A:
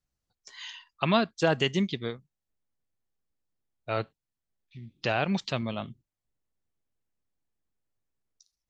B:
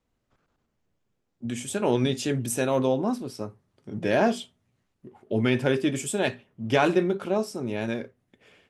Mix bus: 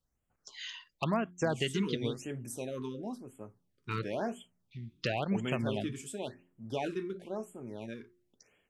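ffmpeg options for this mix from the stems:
ffmpeg -i stem1.wav -i stem2.wav -filter_complex "[0:a]lowshelf=frequency=160:gain=3,acompressor=threshold=-28dB:ratio=2.5,volume=-1dB[link_01];[1:a]volume=-13dB[link_02];[link_01][link_02]amix=inputs=2:normalize=0,bandreject=frequency=89.11:width_type=h:width=4,bandreject=frequency=178.22:width_type=h:width=4,bandreject=frequency=267.33:width_type=h:width=4,bandreject=frequency=356.44:width_type=h:width=4,asoftclip=type=hard:threshold=-19dB,afftfilt=real='re*(1-between(b*sr/1024,630*pow(4900/630,0.5+0.5*sin(2*PI*0.96*pts/sr))/1.41,630*pow(4900/630,0.5+0.5*sin(2*PI*0.96*pts/sr))*1.41))':imag='im*(1-between(b*sr/1024,630*pow(4900/630,0.5+0.5*sin(2*PI*0.96*pts/sr))/1.41,630*pow(4900/630,0.5+0.5*sin(2*PI*0.96*pts/sr))*1.41))':win_size=1024:overlap=0.75" out.wav

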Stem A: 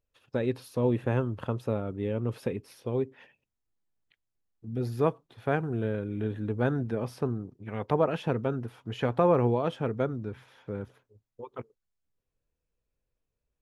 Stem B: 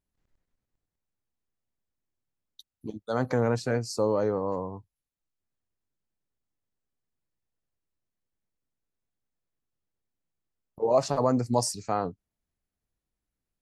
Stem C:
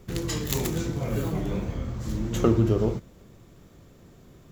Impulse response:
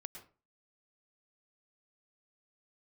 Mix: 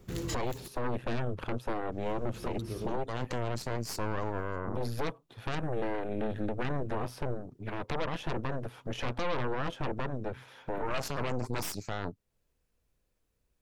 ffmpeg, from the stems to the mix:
-filter_complex "[0:a]volume=2dB,asplit=2[link_01][link_02];[1:a]volume=1dB[link_03];[2:a]volume=-6dB,asplit=3[link_04][link_05][link_06];[link_04]atrim=end=0.68,asetpts=PTS-STARTPTS,afade=type=out:start_time=0.676:duration=0.004:curve=hsin[link_07];[link_05]atrim=start=0.68:end=1.92,asetpts=PTS-STARTPTS,volume=0[link_08];[link_06]atrim=start=1.92,asetpts=PTS-STARTPTS,afade=type=in:duration=0.004:curve=hsin[link_09];[link_07][link_08][link_09]concat=n=3:v=0:a=1,asplit=2[link_10][link_11];[link_11]volume=-18.5dB[link_12];[link_02]apad=whole_len=199111[link_13];[link_10][link_13]sidechaincompress=threshold=-41dB:ratio=8:attack=16:release=516[link_14];[link_01][link_03]amix=inputs=2:normalize=0,aeval=exprs='0.398*(cos(1*acos(clip(val(0)/0.398,-1,1)))-cos(1*PI/2))+0.0708*(cos(3*acos(clip(val(0)/0.398,-1,1)))-cos(3*PI/2))+0.0708*(cos(5*acos(clip(val(0)/0.398,-1,1)))-cos(5*PI/2))+0.178*(cos(8*acos(clip(val(0)/0.398,-1,1)))-cos(8*PI/2))':channel_layout=same,acompressor=threshold=-35dB:ratio=1.5,volume=0dB[link_15];[3:a]atrim=start_sample=2205[link_16];[link_12][link_16]afir=irnorm=-1:irlink=0[link_17];[link_14][link_15][link_17]amix=inputs=3:normalize=0,alimiter=limit=-23dB:level=0:latency=1:release=17"

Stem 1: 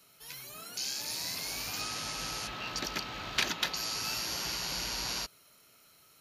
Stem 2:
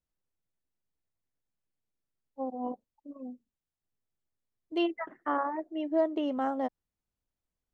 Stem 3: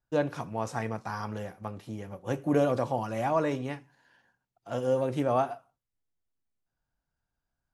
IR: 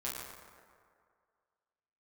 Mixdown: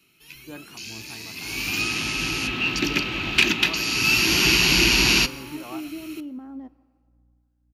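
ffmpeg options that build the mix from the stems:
-filter_complex "[0:a]equalizer=frequency=2600:width_type=o:width=0.55:gain=14.5,acontrast=73,volume=-0.5dB,afade=type=in:start_time=1.33:duration=0.37:silence=0.298538,afade=type=in:start_time=3.84:duration=0.65:silence=0.421697,asplit=2[link_01][link_02];[link_02]volume=-16dB[link_03];[1:a]alimiter=level_in=4.5dB:limit=-24dB:level=0:latency=1,volume=-4.5dB,volume=-16dB,asplit=2[link_04][link_05];[link_05]volume=-17.5dB[link_06];[2:a]aeval=exprs='val(0)+0.00178*(sin(2*PI*60*n/s)+sin(2*PI*2*60*n/s)/2+sin(2*PI*3*60*n/s)/3+sin(2*PI*4*60*n/s)/4+sin(2*PI*5*60*n/s)/5)':channel_layout=same,acrossover=split=450[link_07][link_08];[link_07]aeval=exprs='val(0)*(1-0.7/2+0.7/2*cos(2*PI*1.6*n/s))':channel_layout=same[link_09];[link_08]aeval=exprs='val(0)*(1-0.7/2-0.7/2*cos(2*PI*1.6*n/s))':channel_layout=same[link_10];[link_09][link_10]amix=inputs=2:normalize=0,equalizer=frequency=200:width=0.35:gain=-10.5,adelay=350,volume=-11.5dB[link_11];[3:a]atrim=start_sample=2205[link_12];[link_03][link_06]amix=inputs=2:normalize=0[link_13];[link_13][link_12]afir=irnorm=-1:irlink=0[link_14];[link_01][link_04][link_11][link_14]amix=inputs=4:normalize=0,lowshelf=frequency=430:width_type=q:width=3:gain=7,acontrast=52"

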